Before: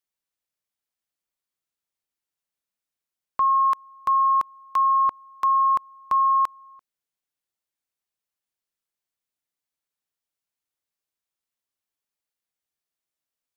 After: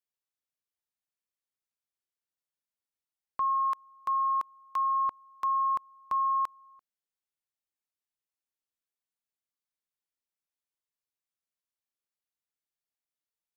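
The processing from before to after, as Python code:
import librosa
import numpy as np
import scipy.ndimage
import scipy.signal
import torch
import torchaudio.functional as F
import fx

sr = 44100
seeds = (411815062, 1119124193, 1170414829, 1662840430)

y = fx.low_shelf(x, sr, hz=150.0, db=-11.0, at=(3.53, 4.94), fade=0.02)
y = F.gain(torch.from_numpy(y), -8.0).numpy()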